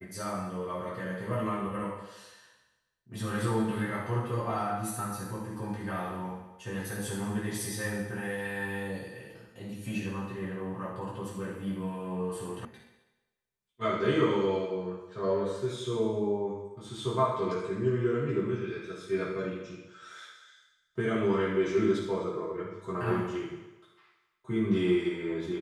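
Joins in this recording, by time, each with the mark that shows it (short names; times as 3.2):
12.65 sound cut off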